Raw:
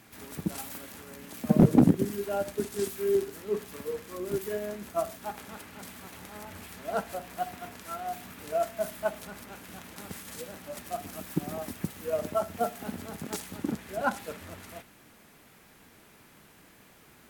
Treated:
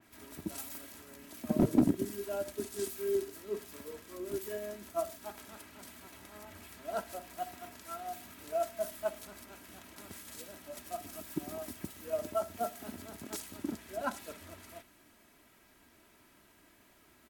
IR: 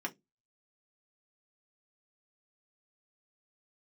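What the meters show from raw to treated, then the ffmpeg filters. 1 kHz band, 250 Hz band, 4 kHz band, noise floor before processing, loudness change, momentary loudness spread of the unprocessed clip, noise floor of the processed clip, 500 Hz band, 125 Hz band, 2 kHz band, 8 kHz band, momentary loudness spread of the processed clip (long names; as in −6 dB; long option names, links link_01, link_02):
−6.5 dB, −7.0 dB, −4.5 dB, −57 dBFS, −6.5 dB, 16 LU, −64 dBFS, −5.5 dB, −11.5 dB, −7.5 dB, −3.0 dB, 16 LU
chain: -af "aecho=1:1:3.1:0.49,adynamicequalizer=threshold=0.00447:dfrequency=3400:dqfactor=0.7:tfrequency=3400:tqfactor=0.7:attack=5:release=100:ratio=0.375:range=2:mode=boostabove:tftype=highshelf,volume=-7.5dB"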